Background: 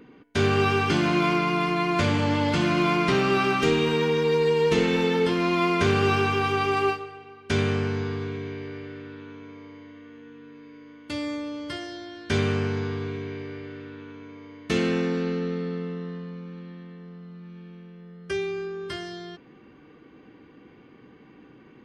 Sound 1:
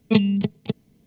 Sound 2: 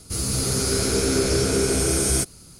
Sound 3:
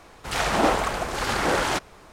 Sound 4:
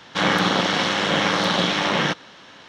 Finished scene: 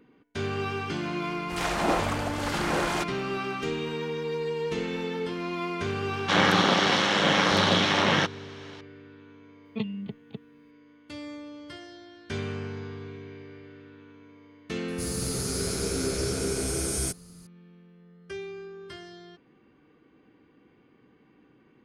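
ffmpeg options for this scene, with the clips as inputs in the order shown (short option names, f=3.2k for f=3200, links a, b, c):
-filter_complex "[0:a]volume=-9dB[a];[3:a]atrim=end=2.12,asetpts=PTS-STARTPTS,volume=-5.5dB,afade=t=in:d=0.004:c=hsin,afade=t=out:st=2.116:d=0.004:c=hsin,adelay=1250[b];[4:a]atrim=end=2.68,asetpts=PTS-STARTPTS,volume=-2dB,afade=t=in:d=0.004:c=hsin,afade=t=out:st=2.676:d=0.004:c=hsin,adelay=6130[c];[1:a]atrim=end=1.06,asetpts=PTS-STARTPTS,volume=-14dB,afade=t=in:d=0.004:c=hsin,afade=t=out:st=1.056:d=0.004:c=hsin,adelay=9650[d];[2:a]atrim=end=2.59,asetpts=PTS-STARTPTS,volume=-8dB,afade=t=in:d=0.004:c=hsin,afade=t=out:st=2.586:d=0.004:c=hsin,adelay=14880[e];[a][b][c][d][e]amix=inputs=5:normalize=0"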